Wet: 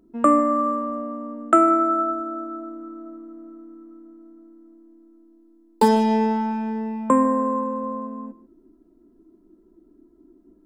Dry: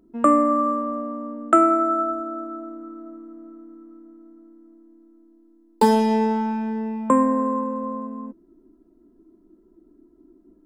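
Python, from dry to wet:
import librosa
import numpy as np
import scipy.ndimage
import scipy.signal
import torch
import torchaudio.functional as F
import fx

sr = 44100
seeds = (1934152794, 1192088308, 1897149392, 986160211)

y = fx.lowpass(x, sr, hz=7400.0, slope=12, at=(5.88, 6.51))
y = y + 10.0 ** (-18.5 / 20.0) * np.pad(y, (int(151 * sr / 1000.0), 0))[:len(y)]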